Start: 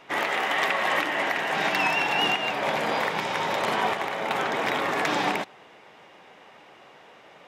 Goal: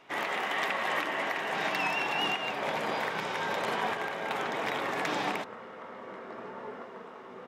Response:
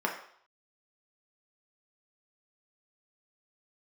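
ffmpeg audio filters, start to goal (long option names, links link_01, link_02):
-filter_complex "[0:a]asplit=2[link_01][link_02];[link_02]asetrate=25442,aresample=44100[link_03];[1:a]atrim=start_sample=2205[link_04];[link_03][link_04]afir=irnorm=-1:irlink=0,volume=-19.5dB[link_05];[link_01][link_05]amix=inputs=2:normalize=0,volume=-6.5dB"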